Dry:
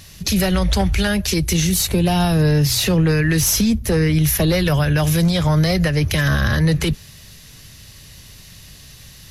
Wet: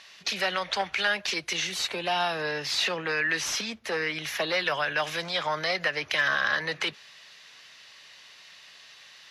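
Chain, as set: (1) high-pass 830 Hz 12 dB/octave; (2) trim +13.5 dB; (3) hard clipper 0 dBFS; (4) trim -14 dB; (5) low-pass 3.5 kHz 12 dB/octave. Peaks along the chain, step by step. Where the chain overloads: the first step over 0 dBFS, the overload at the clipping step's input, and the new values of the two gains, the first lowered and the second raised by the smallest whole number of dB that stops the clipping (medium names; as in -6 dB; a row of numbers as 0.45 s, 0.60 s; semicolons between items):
-7.0 dBFS, +6.5 dBFS, 0.0 dBFS, -14.0 dBFS, -13.5 dBFS; step 2, 6.5 dB; step 2 +6.5 dB, step 4 -7 dB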